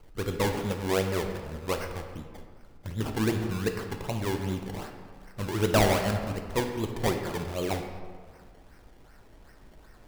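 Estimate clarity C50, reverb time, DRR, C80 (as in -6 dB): 6.0 dB, 1.8 s, 4.0 dB, 7.5 dB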